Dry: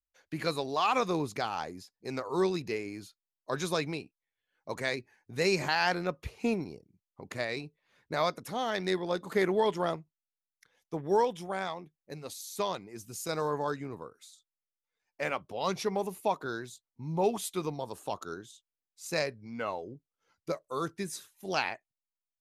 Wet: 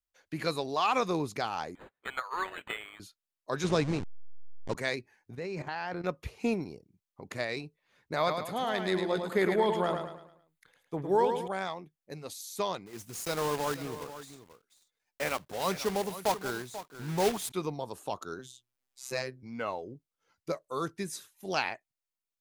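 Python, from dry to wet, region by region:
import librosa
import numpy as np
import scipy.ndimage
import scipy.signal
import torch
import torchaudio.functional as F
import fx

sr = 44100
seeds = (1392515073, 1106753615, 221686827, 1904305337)

y = fx.chain(x, sr, fx.transient(attack_db=11, sustain_db=4),
    fx.highpass_res(hz=1400.0, q=2.0),
    fx.resample_linear(factor=8), at=(1.75, 3.0))
y = fx.chain(y, sr, fx.delta_hold(step_db=-35.0),
    fx.lowpass(hz=7900.0, slope=24),
    fx.low_shelf(hz=430.0, db=8.5), at=(3.64, 4.75))
y = fx.chain(y, sr, fx.lowpass(hz=1400.0, slope=6),
    fx.level_steps(step_db=12), at=(5.35, 6.04))
y = fx.chain(y, sr, fx.peak_eq(hz=5600.0, db=-14.5, octaves=0.22),
    fx.echo_feedback(ms=107, feedback_pct=40, wet_db=-6.5),
    fx.sustainer(db_per_s=110.0), at=(8.16, 11.48))
y = fx.chain(y, sr, fx.block_float(bits=3),
    fx.echo_single(ms=488, db=-13.0), at=(12.86, 17.52))
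y = fx.chain(y, sr, fx.robotise(hz=129.0),
    fx.hum_notches(base_hz=60, count=6),
    fx.band_squash(depth_pct=40), at=(18.39, 19.43))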